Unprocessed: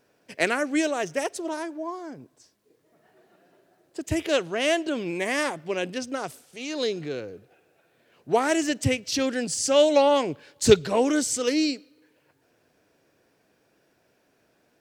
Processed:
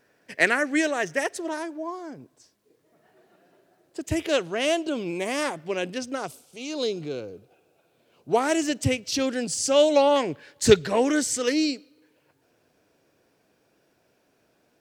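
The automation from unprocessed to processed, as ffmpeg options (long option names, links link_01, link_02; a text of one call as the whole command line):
ffmpeg -i in.wav -af "asetnsamples=nb_out_samples=441:pad=0,asendcmd='1.58 equalizer g -0.5;4.65 equalizer g -9;5.42 equalizer g -0.5;6.26 equalizer g -12.5;8.33 equalizer g -3;10.16 equalizer g 6;11.52 equalizer g -3',equalizer=frequency=1800:width_type=o:width=0.43:gain=8.5" out.wav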